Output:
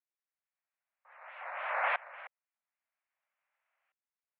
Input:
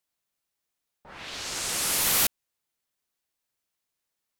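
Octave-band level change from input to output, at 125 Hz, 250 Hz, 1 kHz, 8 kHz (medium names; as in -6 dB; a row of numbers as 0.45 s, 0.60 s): under -40 dB, under -40 dB, +1.5 dB, under -40 dB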